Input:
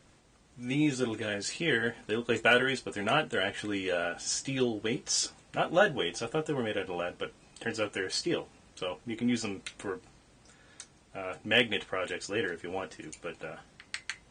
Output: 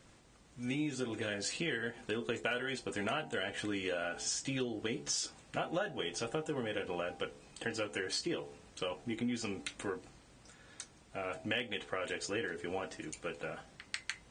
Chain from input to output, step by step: de-hum 71.91 Hz, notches 13; compressor 6:1, threshold -33 dBFS, peak gain reduction 14 dB

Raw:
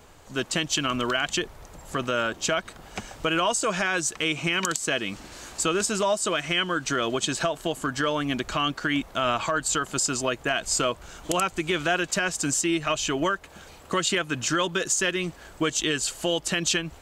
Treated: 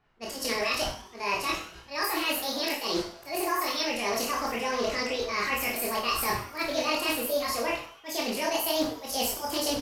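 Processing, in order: gate -38 dBFS, range -28 dB; low-pass opened by the level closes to 1700 Hz, open at -20.5 dBFS; harmonic-percussive split percussive -8 dB; reverse; compressor 10:1, threshold -38 dBFS, peak gain reduction 17.5 dB; reverse; auto swell 0.205 s; vocal rider 2 s; on a send: frequency-shifting echo 0.17 s, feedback 47%, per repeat +95 Hz, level -16 dB; on the sum: Schroeder reverb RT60 0.69 s, combs from 30 ms, DRR -3 dB; speed mistake 45 rpm record played at 78 rpm; Doppler distortion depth 0.17 ms; gain +8.5 dB

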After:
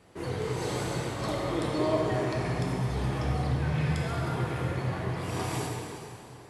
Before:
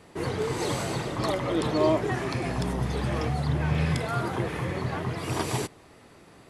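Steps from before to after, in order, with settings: plate-style reverb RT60 2.9 s, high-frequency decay 0.85×, DRR -2 dB; gain -7 dB

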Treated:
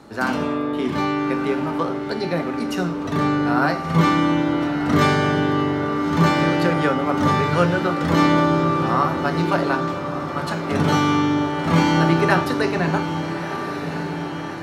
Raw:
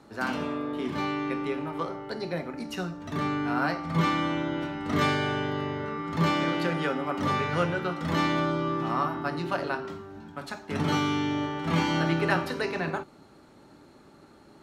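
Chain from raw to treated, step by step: dynamic EQ 2800 Hz, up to -4 dB, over -42 dBFS, Q 1.1; diffused feedback echo 1.266 s, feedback 64%, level -9 dB; gain +8.5 dB

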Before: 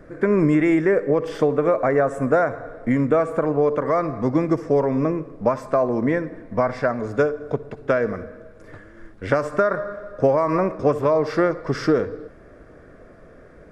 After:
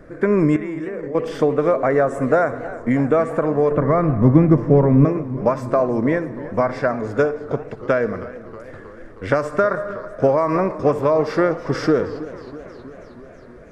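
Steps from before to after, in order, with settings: 0.56–1.15 level quantiser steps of 15 dB; 3.71–5.05 tone controls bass +13 dB, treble -14 dB; warbling echo 0.32 s, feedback 67%, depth 148 cents, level -16.5 dB; gain +1.5 dB

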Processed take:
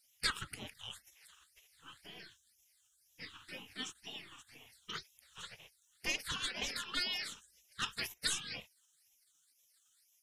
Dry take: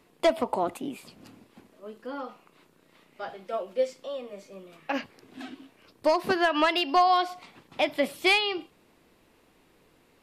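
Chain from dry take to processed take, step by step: spectral gate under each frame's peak -25 dB weak; phaser stages 8, 2 Hz, lowest notch 610–1400 Hz; gain +7.5 dB

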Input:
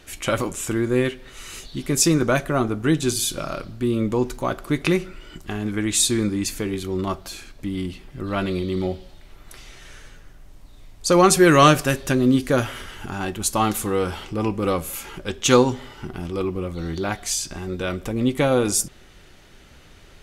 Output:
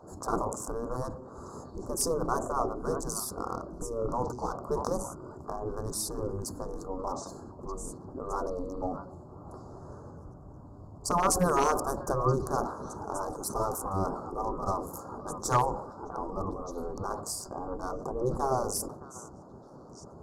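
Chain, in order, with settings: Wiener smoothing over 15 samples; in parallel at +2.5 dB: compressor 10:1, threshold -31 dBFS, peak gain reduction 22 dB; on the sum: elliptic band-stop 1100–5700 Hz, stop band 60 dB; on a send: delay with a stepping band-pass 0.614 s, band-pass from 1300 Hz, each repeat 1.4 oct, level -12 dB; on the sum: overloaded stage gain 6.5 dB; high shelf 8700 Hz -10.5 dB; spectral gate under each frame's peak -10 dB weak; dynamic EQ 6500 Hz, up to -5 dB, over -46 dBFS, Q 2; sustainer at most 79 dB/s

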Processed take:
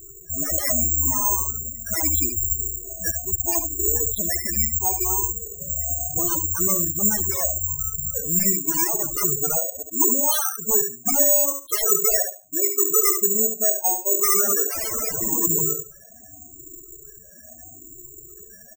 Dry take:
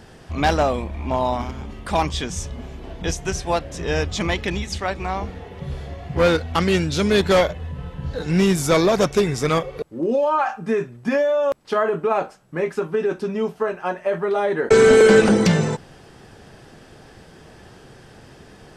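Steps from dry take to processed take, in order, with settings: moving spectral ripple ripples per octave 0.64, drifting +0.77 Hz, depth 13 dB; high shelf 4000 Hz +7.5 dB; comb 3 ms, depth 56%; wrapped overs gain 11 dB; short-mantissa float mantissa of 4-bit; air absorption 67 m; feedback echo 70 ms, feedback 21%, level -7 dB; loudest bins only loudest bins 8; careless resampling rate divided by 6×, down filtered, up zero stuff; gain -6.5 dB

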